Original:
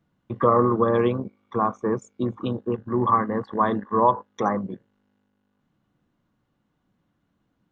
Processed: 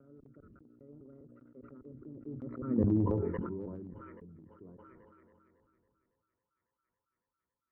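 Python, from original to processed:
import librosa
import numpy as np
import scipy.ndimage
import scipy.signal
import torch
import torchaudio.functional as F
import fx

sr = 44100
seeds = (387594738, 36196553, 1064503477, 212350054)

y = fx.block_reorder(x, sr, ms=239.0, group=3)
y = fx.doppler_pass(y, sr, speed_mps=54, closest_m=3.3, pass_at_s=2.8)
y = fx.highpass(y, sr, hz=50.0, slope=6)
y = fx.low_shelf(y, sr, hz=390.0, db=9.5)
y = fx.fixed_phaser(y, sr, hz=1900.0, stages=4)
y = fx.echo_wet_highpass(y, sr, ms=277, feedback_pct=82, hz=3700.0, wet_db=-12.0)
y = fx.filter_sweep_lowpass(y, sr, from_hz=360.0, to_hz=860.0, start_s=5.94, end_s=6.58, q=0.92)
y = fx.peak_eq(y, sr, hz=170.0, db=-11.0, octaves=1.2)
y = fx.transient(y, sr, attack_db=3, sustain_db=8)
y = fx.sustainer(y, sr, db_per_s=21.0)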